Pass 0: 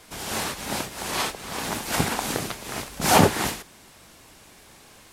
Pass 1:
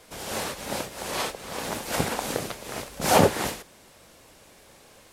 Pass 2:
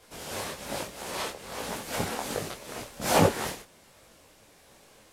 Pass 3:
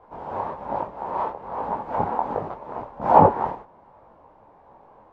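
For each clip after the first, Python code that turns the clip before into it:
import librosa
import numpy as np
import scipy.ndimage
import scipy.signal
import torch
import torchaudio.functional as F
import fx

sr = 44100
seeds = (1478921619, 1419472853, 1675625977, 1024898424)

y1 = fx.peak_eq(x, sr, hz=530.0, db=7.5, octaves=0.55)
y1 = y1 * 10.0 ** (-3.5 / 20.0)
y2 = fx.detune_double(y1, sr, cents=43)
y3 = fx.lowpass_res(y2, sr, hz=920.0, q=4.6)
y3 = y3 * 10.0 ** (2.0 / 20.0)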